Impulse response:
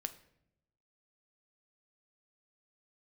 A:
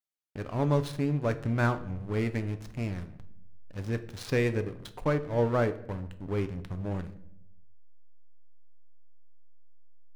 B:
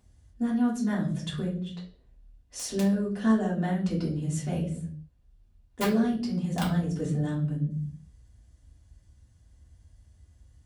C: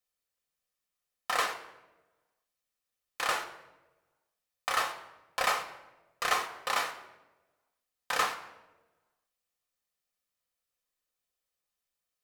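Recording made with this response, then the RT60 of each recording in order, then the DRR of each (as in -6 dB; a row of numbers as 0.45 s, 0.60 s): A; no single decay rate, 0.55 s, 1.1 s; 9.0 dB, -6.5 dB, 4.0 dB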